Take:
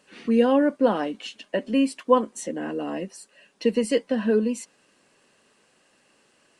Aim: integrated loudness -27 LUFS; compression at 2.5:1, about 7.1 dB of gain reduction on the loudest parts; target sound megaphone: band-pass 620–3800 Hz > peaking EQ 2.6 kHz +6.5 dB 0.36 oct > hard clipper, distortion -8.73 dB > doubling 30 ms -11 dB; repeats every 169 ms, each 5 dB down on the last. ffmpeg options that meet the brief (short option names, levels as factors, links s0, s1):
-filter_complex "[0:a]acompressor=threshold=0.0631:ratio=2.5,highpass=620,lowpass=3800,equalizer=f=2600:t=o:w=0.36:g=6.5,aecho=1:1:169|338|507|676|845|1014|1183:0.562|0.315|0.176|0.0988|0.0553|0.031|0.0173,asoftclip=type=hard:threshold=0.0282,asplit=2[s0][s1];[s1]adelay=30,volume=0.282[s2];[s0][s2]amix=inputs=2:normalize=0,volume=2.82"